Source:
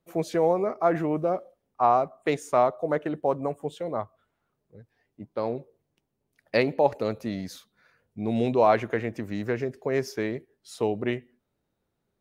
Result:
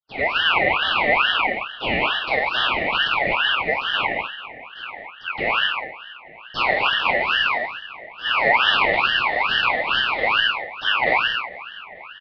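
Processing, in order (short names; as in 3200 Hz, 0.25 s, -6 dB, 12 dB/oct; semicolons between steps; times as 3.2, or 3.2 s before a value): per-bin compression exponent 0.4; gate -27 dBFS, range -46 dB; resonant low shelf 420 Hz +9 dB, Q 1.5; dispersion lows, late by 77 ms, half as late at 430 Hz; frequency shift +360 Hz; downsampling 8000 Hz; tape echo 0.443 s, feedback 85%, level -17 dB, low-pass 1700 Hz; non-linear reverb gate 0.27 s flat, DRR 0.5 dB; ring modulator with a swept carrier 1800 Hz, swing 30%, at 2.3 Hz; gain -4.5 dB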